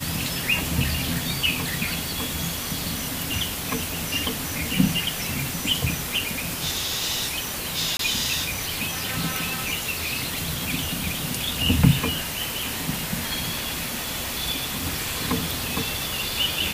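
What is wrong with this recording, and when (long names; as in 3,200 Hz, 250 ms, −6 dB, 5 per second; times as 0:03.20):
0:07.97–0:07.99: drop-out 23 ms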